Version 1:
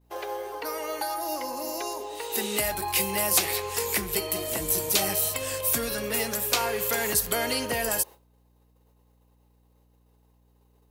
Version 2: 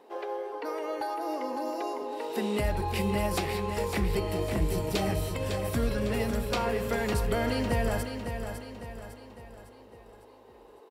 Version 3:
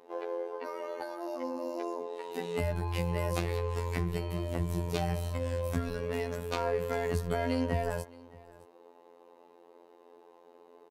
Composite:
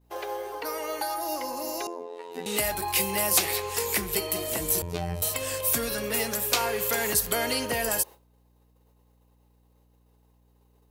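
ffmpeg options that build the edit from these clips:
-filter_complex "[2:a]asplit=2[a][b];[0:a]asplit=3[c][d][e];[c]atrim=end=1.872[f];[a]atrim=start=1.868:end=2.462[g];[d]atrim=start=2.458:end=4.822[h];[b]atrim=start=4.818:end=5.222[i];[e]atrim=start=5.218[j];[f][g]acrossfade=d=0.004:c1=hsin:c2=hsin[k];[k][h]acrossfade=d=0.004:c1=hsin:c2=hsin[l];[l][i]acrossfade=d=0.004:c1=hsin:c2=hsin[m];[m][j]acrossfade=d=0.004:c1=hsin:c2=hsin"

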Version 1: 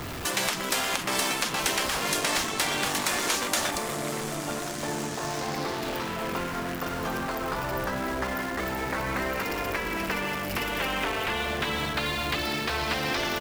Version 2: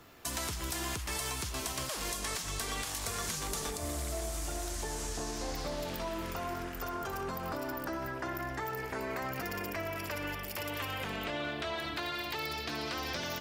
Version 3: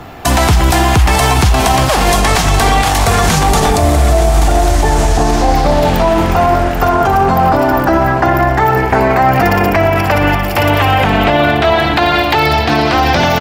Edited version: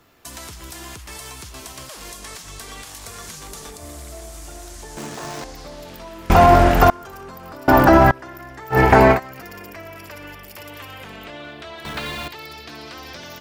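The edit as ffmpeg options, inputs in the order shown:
-filter_complex "[0:a]asplit=2[a][b];[2:a]asplit=3[c][d][e];[1:a]asplit=6[f][g][h][i][j][k];[f]atrim=end=4.972[l];[a]atrim=start=4.968:end=5.442[m];[g]atrim=start=5.438:end=6.302[n];[c]atrim=start=6.298:end=6.902[o];[h]atrim=start=6.898:end=7.682[p];[d]atrim=start=7.678:end=8.112[q];[i]atrim=start=8.108:end=8.8[r];[e]atrim=start=8.7:end=9.2[s];[j]atrim=start=9.1:end=11.852[t];[b]atrim=start=11.848:end=12.282[u];[k]atrim=start=12.278[v];[l][m]acrossfade=d=0.004:c1=hsin:c2=hsin[w];[w][n]acrossfade=d=0.004:c1=hsin:c2=hsin[x];[x][o]acrossfade=d=0.004:c1=hsin:c2=hsin[y];[y][p]acrossfade=d=0.004:c1=hsin:c2=hsin[z];[z][q]acrossfade=d=0.004:c1=hsin:c2=hsin[aa];[aa][r]acrossfade=d=0.004:c1=hsin:c2=hsin[ab];[ab][s]acrossfade=d=0.1:c1=tri:c2=tri[ac];[ac][t]acrossfade=d=0.1:c1=tri:c2=tri[ad];[ad][u]acrossfade=d=0.004:c1=hsin:c2=hsin[ae];[ae][v]acrossfade=d=0.004:c1=hsin:c2=hsin"

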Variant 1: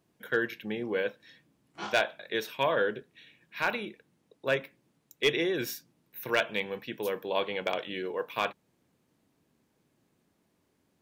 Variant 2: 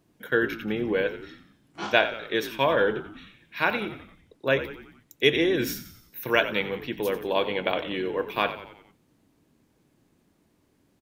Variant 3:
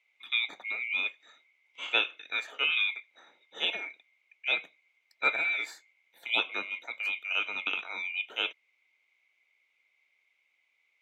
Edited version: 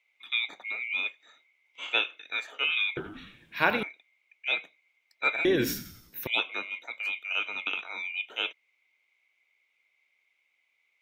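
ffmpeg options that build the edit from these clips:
-filter_complex "[1:a]asplit=2[a][b];[2:a]asplit=3[c][d][e];[c]atrim=end=2.972[f];[a]atrim=start=2.968:end=3.832[g];[d]atrim=start=3.828:end=5.452[h];[b]atrim=start=5.448:end=6.272[i];[e]atrim=start=6.268[j];[f][g]acrossfade=d=0.004:c1=hsin:c2=hsin[k];[k][h]acrossfade=d=0.004:c1=hsin:c2=hsin[l];[l][i]acrossfade=d=0.004:c1=hsin:c2=hsin[m];[m][j]acrossfade=d=0.004:c1=hsin:c2=hsin"

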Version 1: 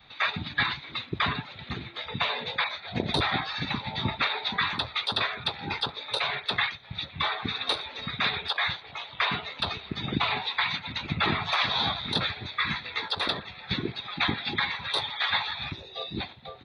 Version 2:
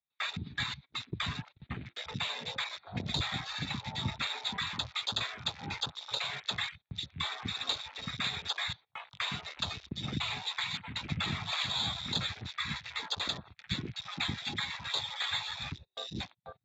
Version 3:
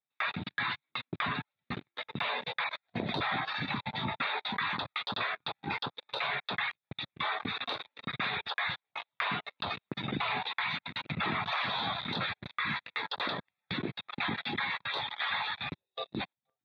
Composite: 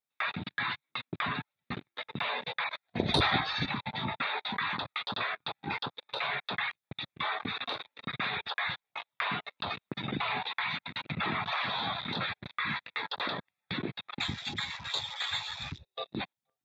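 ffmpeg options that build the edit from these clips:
-filter_complex "[2:a]asplit=3[a][b][c];[a]atrim=end=2.992[d];[0:a]atrim=start=2.988:end=3.662[e];[b]atrim=start=3.658:end=14.202[f];[1:a]atrim=start=14.198:end=15.852[g];[c]atrim=start=15.848[h];[d][e]acrossfade=d=0.004:c1=hsin:c2=hsin[i];[i][f]acrossfade=d=0.004:c1=hsin:c2=hsin[j];[j][g]acrossfade=d=0.004:c1=hsin:c2=hsin[k];[k][h]acrossfade=d=0.004:c1=hsin:c2=hsin"

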